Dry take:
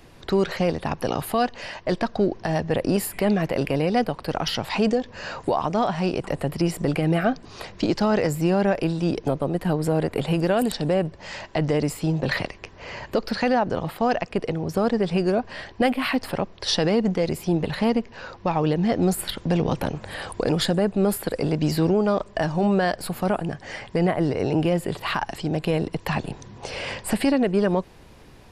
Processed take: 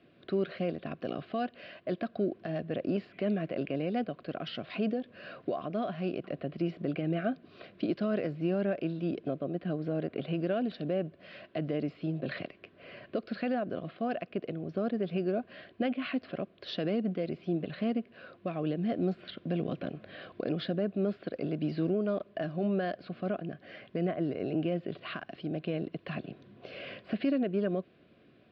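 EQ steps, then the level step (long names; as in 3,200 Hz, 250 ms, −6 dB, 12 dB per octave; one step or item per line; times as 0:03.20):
Butterworth band-reject 880 Hz, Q 2.3
high-frequency loss of the air 270 metres
loudspeaker in its box 200–4,200 Hz, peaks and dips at 470 Hz −6 dB, 1,200 Hz −7 dB, 1,900 Hz −7 dB
−6.0 dB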